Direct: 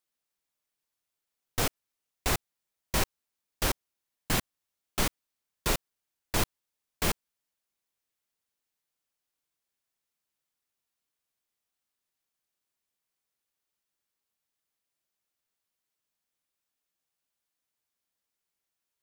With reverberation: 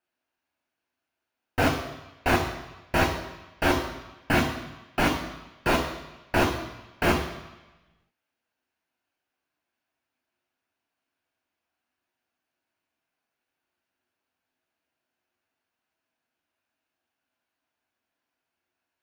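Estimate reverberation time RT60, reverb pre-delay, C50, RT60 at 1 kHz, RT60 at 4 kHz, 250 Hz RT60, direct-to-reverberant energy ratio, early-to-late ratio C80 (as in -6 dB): 1.1 s, 3 ms, 6.5 dB, 1.1 s, 1.1 s, 0.95 s, 2.0 dB, 9.0 dB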